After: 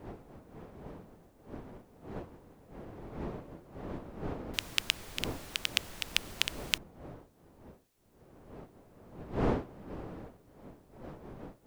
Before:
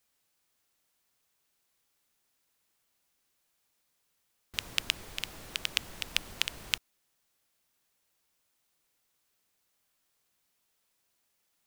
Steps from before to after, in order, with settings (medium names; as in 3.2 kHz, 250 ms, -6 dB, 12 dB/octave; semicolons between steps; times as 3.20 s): wind noise 450 Hz -43 dBFS